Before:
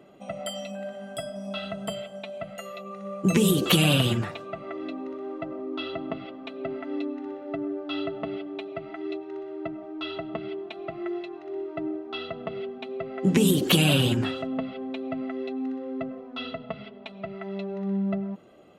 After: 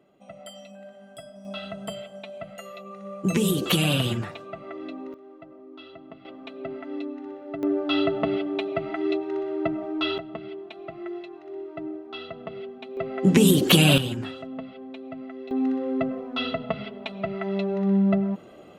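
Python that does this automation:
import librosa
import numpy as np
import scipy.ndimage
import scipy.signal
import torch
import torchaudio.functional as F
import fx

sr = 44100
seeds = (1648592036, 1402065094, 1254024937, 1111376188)

y = fx.gain(x, sr, db=fx.steps((0.0, -9.0), (1.45, -2.0), (5.14, -12.0), (6.25, -2.0), (7.63, 7.5), (10.18, -3.0), (12.97, 3.5), (13.98, -6.0), (15.51, 6.5)))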